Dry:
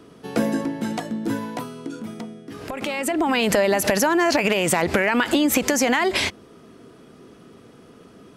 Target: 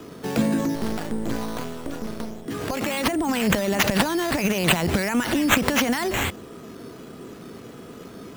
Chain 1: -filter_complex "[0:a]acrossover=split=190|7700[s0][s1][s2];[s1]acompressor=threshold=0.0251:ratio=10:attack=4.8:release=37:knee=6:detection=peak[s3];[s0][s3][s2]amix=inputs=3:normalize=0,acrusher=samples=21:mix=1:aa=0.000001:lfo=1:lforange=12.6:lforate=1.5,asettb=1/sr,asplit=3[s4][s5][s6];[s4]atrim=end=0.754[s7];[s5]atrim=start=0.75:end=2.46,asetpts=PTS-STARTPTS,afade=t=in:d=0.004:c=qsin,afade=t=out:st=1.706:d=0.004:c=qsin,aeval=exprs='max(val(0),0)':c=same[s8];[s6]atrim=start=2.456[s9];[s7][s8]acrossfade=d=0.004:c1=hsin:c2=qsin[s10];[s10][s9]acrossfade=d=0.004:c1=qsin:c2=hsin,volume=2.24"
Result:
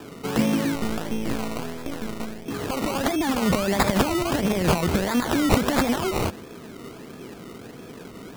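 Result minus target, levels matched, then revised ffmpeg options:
decimation with a swept rate: distortion +4 dB
-filter_complex "[0:a]acrossover=split=190|7700[s0][s1][s2];[s1]acompressor=threshold=0.0251:ratio=10:attack=4.8:release=37:knee=6:detection=peak[s3];[s0][s3][s2]amix=inputs=3:normalize=0,acrusher=samples=7:mix=1:aa=0.000001:lfo=1:lforange=4.2:lforate=1.5,asettb=1/sr,asplit=3[s4][s5][s6];[s4]atrim=end=0.754[s7];[s5]atrim=start=0.75:end=2.46,asetpts=PTS-STARTPTS,afade=t=in:d=0.004:c=qsin,afade=t=out:st=1.706:d=0.004:c=qsin,aeval=exprs='max(val(0),0)':c=same[s8];[s6]atrim=start=2.456[s9];[s7][s8]acrossfade=d=0.004:c1=hsin:c2=qsin[s10];[s10][s9]acrossfade=d=0.004:c1=qsin:c2=hsin,volume=2.24"

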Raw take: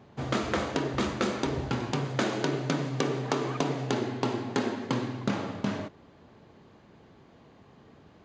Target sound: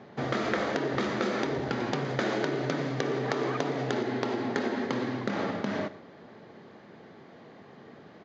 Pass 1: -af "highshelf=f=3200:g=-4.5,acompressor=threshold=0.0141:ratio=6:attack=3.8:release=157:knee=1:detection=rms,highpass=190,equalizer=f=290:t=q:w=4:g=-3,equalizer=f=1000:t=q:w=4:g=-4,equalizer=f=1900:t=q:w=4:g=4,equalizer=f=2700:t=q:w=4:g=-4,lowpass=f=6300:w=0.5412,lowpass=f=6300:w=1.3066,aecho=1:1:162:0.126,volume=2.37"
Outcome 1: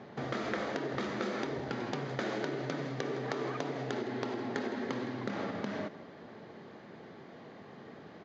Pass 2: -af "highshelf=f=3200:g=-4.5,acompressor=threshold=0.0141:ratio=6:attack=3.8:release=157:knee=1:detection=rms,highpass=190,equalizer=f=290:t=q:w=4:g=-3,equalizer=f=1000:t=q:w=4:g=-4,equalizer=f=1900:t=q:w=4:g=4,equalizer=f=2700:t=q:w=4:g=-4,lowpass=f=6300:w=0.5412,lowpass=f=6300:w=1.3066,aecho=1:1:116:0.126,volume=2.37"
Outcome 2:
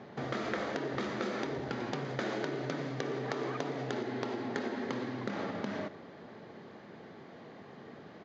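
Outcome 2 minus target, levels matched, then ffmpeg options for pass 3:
compression: peak gain reduction +6.5 dB
-af "highshelf=f=3200:g=-4.5,acompressor=threshold=0.0335:ratio=6:attack=3.8:release=157:knee=1:detection=rms,highpass=190,equalizer=f=290:t=q:w=4:g=-3,equalizer=f=1000:t=q:w=4:g=-4,equalizer=f=1900:t=q:w=4:g=4,equalizer=f=2700:t=q:w=4:g=-4,lowpass=f=6300:w=0.5412,lowpass=f=6300:w=1.3066,aecho=1:1:116:0.126,volume=2.37"

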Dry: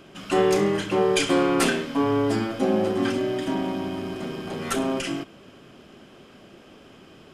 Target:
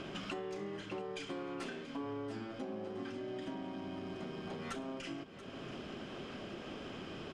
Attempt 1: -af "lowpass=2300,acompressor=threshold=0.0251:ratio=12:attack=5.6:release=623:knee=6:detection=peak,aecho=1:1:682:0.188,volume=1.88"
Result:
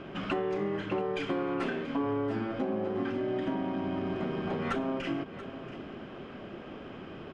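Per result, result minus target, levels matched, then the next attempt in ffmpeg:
8 kHz band -15.0 dB; compression: peak gain reduction -10.5 dB
-af "lowpass=5900,acompressor=threshold=0.0251:ratio=12:attack=5.6:release=623:knee=6:detection=peak,aecho=1:1:682:0.188,volume=1.88"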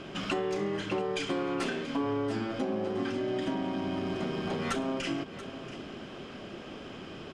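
compression: peak gain reduction -10.5 dB
-af "lowpass=5900,acompressor=threshold=0.00668:ratio=12:attack=5.6:release=623:knee=6:detection=peak,aecho=1:1:682:0.188,volume=1.88"

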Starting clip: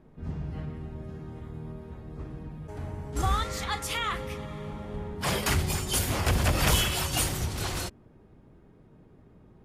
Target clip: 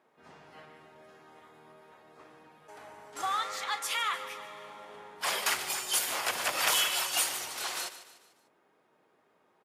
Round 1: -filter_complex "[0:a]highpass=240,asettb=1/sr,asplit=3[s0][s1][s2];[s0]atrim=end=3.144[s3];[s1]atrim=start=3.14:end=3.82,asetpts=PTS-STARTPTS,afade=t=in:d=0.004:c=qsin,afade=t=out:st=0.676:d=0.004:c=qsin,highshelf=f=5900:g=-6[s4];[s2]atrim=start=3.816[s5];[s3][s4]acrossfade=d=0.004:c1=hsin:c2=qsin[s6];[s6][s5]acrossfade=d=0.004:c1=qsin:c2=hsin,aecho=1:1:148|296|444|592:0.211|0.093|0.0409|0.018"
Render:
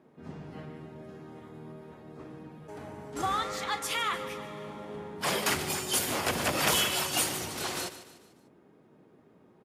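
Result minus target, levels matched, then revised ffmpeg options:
250 Hz band +15.0 dB
-filter_complex "[0:a]highpass=760,asettb=1/sr,asplit=3[s0][s1][s2];[s0]atrim=end=3.144[s3];[s1]atrim=start=3.14:end=3.82,asetpts=PTS-STARTPTS,afade=t=in:d=0.004:c=qsin,afade=t=out:st=0.676:d=0.004:c=qsin,highshelf=f=5900:g=-6[s4];[s2]atrim=start=3.816[s5];[s3][s4]acrossfade=d=0.004:c1=hsin:c2=qsin[s6];[s6][s5]acrossfade=d=0.004:c1=qsin:c2=hsin,aecho=1:1:148|296|444|592:0.211|0.093|0.0409|0.018"

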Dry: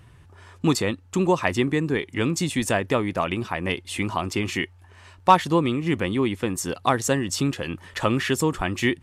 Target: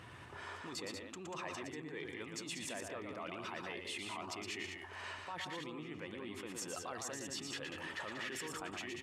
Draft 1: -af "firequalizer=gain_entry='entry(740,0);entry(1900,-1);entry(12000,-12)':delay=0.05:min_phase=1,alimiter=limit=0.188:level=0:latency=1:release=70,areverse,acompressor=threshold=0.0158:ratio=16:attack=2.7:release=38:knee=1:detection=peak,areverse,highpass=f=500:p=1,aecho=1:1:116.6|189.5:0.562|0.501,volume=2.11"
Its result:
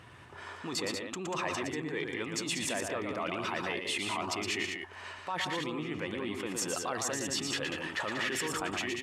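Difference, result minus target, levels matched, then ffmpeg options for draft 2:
compression: peak gain reduction -10 dB
-af "firequalizer=gain_entry='entry(740,0);entry(1900,-1);entry(12000,-12)':delay=0.05:min_phase=1,alimiter=limit=0.188:level=0:latency=1:release=70,areverse,acompressor=threshold=0.00473:ratio=16:attack=2.7:release=38:knee=1:detection=peak,areverse,highpass=f=500:p=1,aecho=1:1:116.6|189.5:0.562|0.501,volume=2.11"

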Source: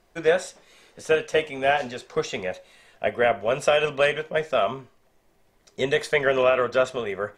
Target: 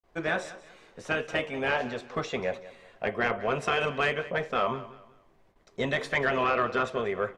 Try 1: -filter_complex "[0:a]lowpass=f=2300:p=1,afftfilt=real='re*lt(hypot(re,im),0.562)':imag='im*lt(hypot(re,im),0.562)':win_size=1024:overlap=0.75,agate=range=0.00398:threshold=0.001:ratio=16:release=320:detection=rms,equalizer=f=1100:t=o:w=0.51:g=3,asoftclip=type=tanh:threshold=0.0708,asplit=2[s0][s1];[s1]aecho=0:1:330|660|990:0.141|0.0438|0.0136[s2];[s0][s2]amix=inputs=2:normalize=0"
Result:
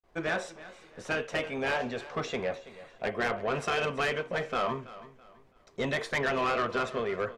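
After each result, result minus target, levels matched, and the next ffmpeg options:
echo 142 ms late; saturation: distortion +11 dB
-filter_complex "[0:a]lowpass=f=2300:p=1,afftfilt=real='re*lt(hypot(re,im),0.562)':imag='im*lt(hypot(re,im),0.562)':win_size=1024:overlap=0.75,agate=range=0.00398:threshold=0.001:ratio=16:release=320:detection=rms,equalizer=f=1100:t=o:w=0.51:g=3,asoftclip=type=tanh:threshold=0.0708,asplit=2[s0][s1];[s1]aecho=0:1:188|376|564:0.141|0.0438|0.0136[s2];[s0][s2]amix=inputs=2:normalize=0"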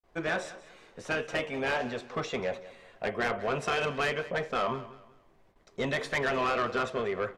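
saturation: distortion +11 dB
-filter_complex "[0:a]lowpass=f=2300:p=1,afftfilt=real='re*lt(hypot(re,im),0.562)':imag='im*lt(hypot(re,im),0.562)':win_size=1024:overlap=0.75,agate=range=0.00398:threshold=0.001:ratio=16:release=320:detection=rms,equalizer=f=1100:t=o:w=0.51:g=3,asoftclip=type=tanh:threshold=0.188,asplit=2[s0][s1];[s1]aecho=0:1:188|376|564:0.141|0.0438|0.0136[s2];[s0][s2]amix=inputs=2:normalize=0"

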